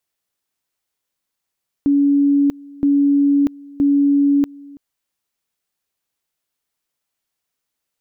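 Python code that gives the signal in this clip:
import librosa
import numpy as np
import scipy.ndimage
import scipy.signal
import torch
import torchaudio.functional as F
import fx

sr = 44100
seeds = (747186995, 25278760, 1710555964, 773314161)

y = fx.two_level_tone(sr, hz=283.0, level_db=-11.0, drop_db=24.0, high_s=0.64, low_s=0.33, rounds=3)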